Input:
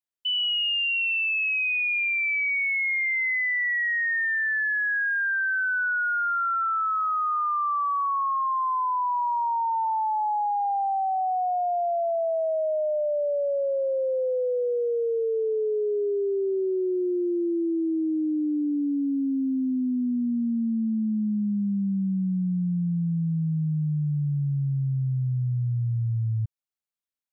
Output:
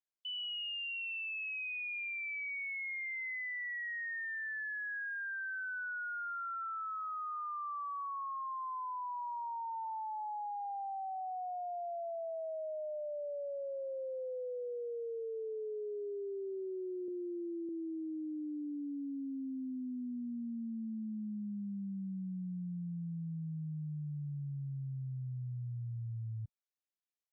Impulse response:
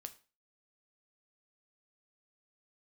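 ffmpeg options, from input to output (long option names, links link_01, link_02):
-filter_complex "[0:a]asettb=1/sr,asplit=3[link_01][link_02][link_03];[link_01]atrim=end=17.084[link_04];[link_02]atrim=start=17.08:end=17.69,asetpts=PTS-STARTPTS,afade=type=in:duration=0.004:curve=qsin,afade=type=out:start_time=0.606:duration=0.004:curve=qsin,aecho=1:1:0.8:0.96,atrim=end_sample=26901[link_05];[link_03]atrim=start=17.686[link_06];[link_04][link_05]acrossfade=duration=0.004:curve1=hsin:curve2=qsin[link_07];[link_07][link_06]acrossfade=duration=0.004:curve1=qsin:curve2=hsin,alimiter=level_in=5dB:limit=-24dB:level=0:latency=1,volume=-5dB,volume=-8dB" -ar 16000 -c:a libvorbis -b:a 96k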